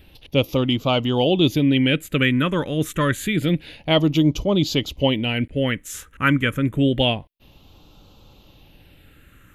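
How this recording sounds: phasing stages 4, 0.28 Hz, lowest notch 750–1700 Hz

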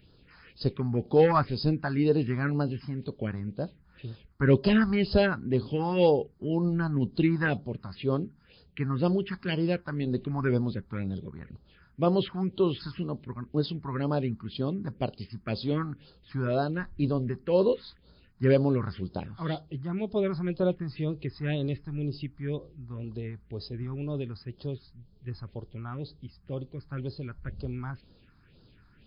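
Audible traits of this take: phasing stages 4, 2 Hz, lowest notch 470–2200 Hz

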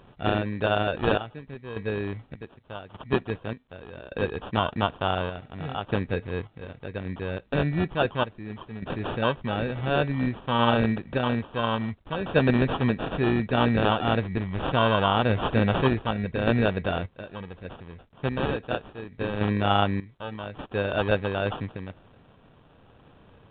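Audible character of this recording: random-step tremolo 1.7 Hz, depth 85%; aliases and images of a low sample rate 2.1 kHz, jitter 0%; A-law

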